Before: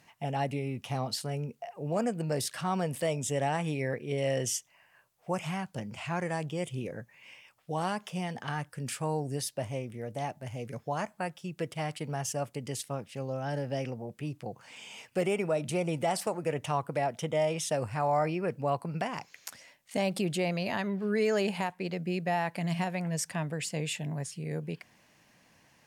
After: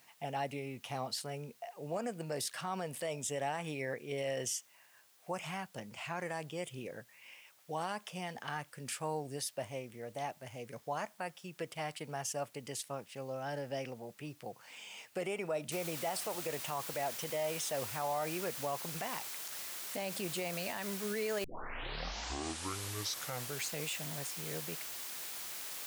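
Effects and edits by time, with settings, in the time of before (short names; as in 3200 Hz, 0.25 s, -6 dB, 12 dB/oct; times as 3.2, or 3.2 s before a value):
15.72 noise floor step -64 dB -41 dB
21.44 tape start 2.40 s
whole clip: low shelf 260 Hz -11.5 dB; limiter -24.5 dBFS; gain -2.5 dB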